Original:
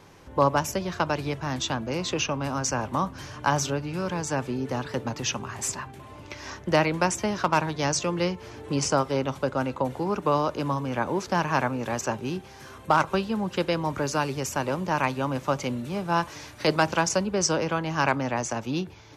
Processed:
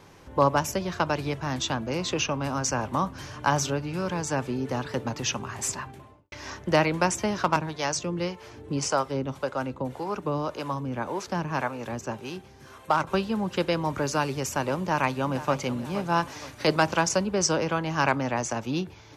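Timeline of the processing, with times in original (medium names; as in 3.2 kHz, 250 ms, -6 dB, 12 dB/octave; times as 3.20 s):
5.86–6.32 s: studio fade out
7.56–13.07 s: harmonic tremolo 1.8 Hz, crossover 430 Hz
14.77–15.60 s: echo throw 470 ms, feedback 50%, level -13.5 dB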